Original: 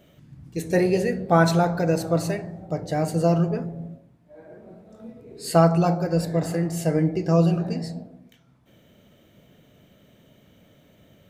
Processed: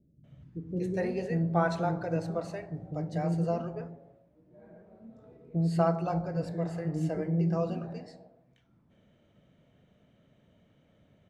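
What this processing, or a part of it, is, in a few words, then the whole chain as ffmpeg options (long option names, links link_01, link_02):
through cloth: -filter_complex "[0:a]asettb=1/sr,asplit=3[link_01][link_02][link_03];[link_01]atrim=end=2.504[link_04];[link_02]atrim=start=2.5:end=3.05,asetpts=PTS-STARTPTS,afade=type=in:duration=0.004:curve=qsin,afade=type=out:start_time=0.546:duration=0.004:curve=qsin,highshelf=frequency=4200:gain=5.5[link_05];[link_03]atrim=start=3.046[link_06];[link_04][link_05]acrossfade=duration=0.004:curve1=hsin:curve2=qsin[link_07];[link_07][link_06]acrossfade=duration=0.004:curve1=qsin:curve2=hsin,lowpass=8800,highshelf=frequency=3200:gain=-11.5,acrossover=split=360[link_08][link_09];[link_09]adelay=240[link_10];[link_08][link_10]amix=inputs=2:normalize=0,volume=-7.5dB"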